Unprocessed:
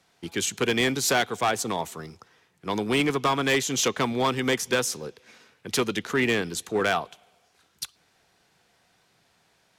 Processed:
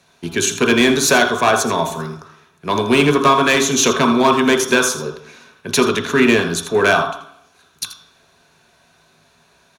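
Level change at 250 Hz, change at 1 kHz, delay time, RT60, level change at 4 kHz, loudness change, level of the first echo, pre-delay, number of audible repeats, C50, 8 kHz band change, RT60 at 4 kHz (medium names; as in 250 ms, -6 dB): +11.0 dB, +11.0 dB, 82 ms, 0.60 s, +8.5 dB, +10.0 dB, -11.0 dB, 3 ms, 1, 6.5 dB, +9.5 dB, 0.65 s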